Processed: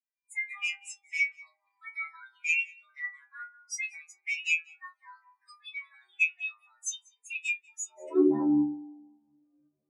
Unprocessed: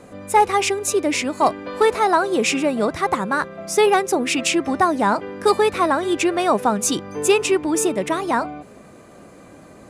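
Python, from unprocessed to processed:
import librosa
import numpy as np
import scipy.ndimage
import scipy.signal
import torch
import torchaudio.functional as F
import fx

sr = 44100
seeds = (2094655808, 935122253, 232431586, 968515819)

p1 = fx.high_shelf(x, sr, hz=3200.0, db=4.0)
p2 = fx.echo_wet_bandpass(p1, sr, ms=105, feedback_pct=79, hz=560.0, wet_db=-14.5)
p3 = fx.over_compress(p2, sr, threshold_db=-22.0, ratio=-0.5)
p4 = p2 + F.gain(torch.from_numpy(p3), -2.0).numpy()
p5 = fx.stiff_resonator(p4, sr, f0_hz=73.0, decay_s=0.75, stiffness=0.002)
p6 = fx.filter_sweep_highpass(p5, sr, from_hz=2100.0, to_hz=93.0, start_s=7.81, end_s=8.45, q=2.2)
p7 = p6 + 10.0 ** (-10.5 / 20.0) * np.pad(p6, (int(190 * sr / 1000.0), 0))[:len(p6)]
p8 = fx.spectral_expand(p7, sr, expansion=2.5)
y = F.gain(torch.from_numpy(p8), -1.0).numpy()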